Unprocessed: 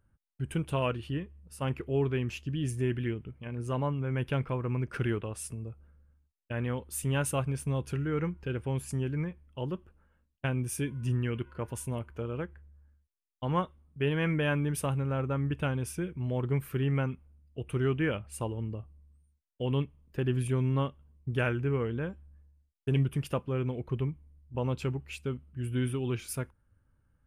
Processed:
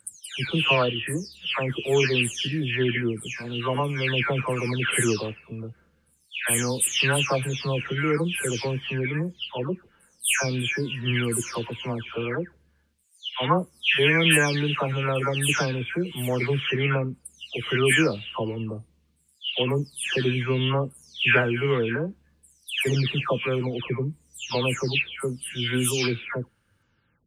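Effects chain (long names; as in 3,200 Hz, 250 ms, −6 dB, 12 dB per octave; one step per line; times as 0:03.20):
every frequency bin delayed by itself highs early, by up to 441 ms
meter weighting curve D
level +9 dB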